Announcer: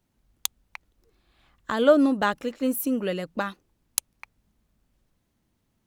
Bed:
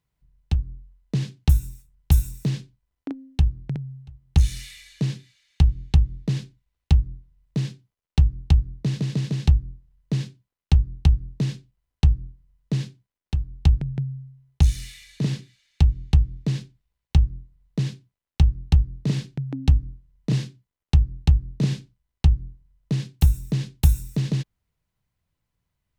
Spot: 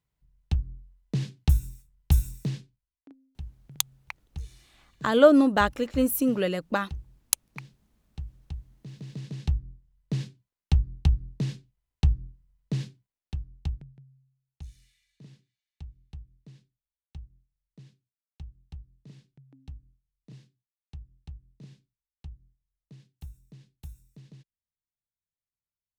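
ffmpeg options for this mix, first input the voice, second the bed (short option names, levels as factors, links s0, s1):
-filter_complex "[0:a]adelay=3350,volume=1.19[s0];[1:a]volume=3.76,afade=t=out:st=2.31:d=0.67:silence=0.149624,afade=t=in:st=8.83:d=1.29:silence=0.16788,afade=t=out:st=12.91:d=1.06:silence=0.0891251[s1];[s0][s1]amix=inputs=2:normalize=0"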